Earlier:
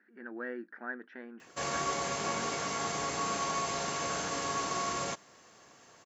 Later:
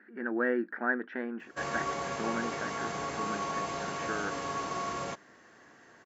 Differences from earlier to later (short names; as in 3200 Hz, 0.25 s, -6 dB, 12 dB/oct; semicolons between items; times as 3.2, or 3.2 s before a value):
speech +11.0 dB; master: add high shelf 4100 Hz -11.5 dB